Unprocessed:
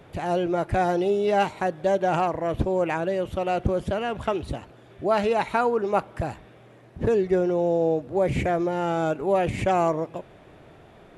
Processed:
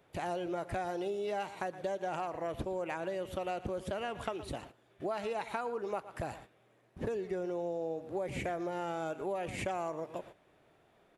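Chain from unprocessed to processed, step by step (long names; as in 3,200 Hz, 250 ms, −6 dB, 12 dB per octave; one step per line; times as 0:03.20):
high-shelf EQ 8,700 Hz +7 dB
single-tap delay 116 ms −17 dB
noise gate −43 dBFS, range −11 dB
low-shelf EQ 240 Hz −8.5 dB
downward compressor, threshold −30 dBFS, peak gain reduction 12 dB
level −3.5 dB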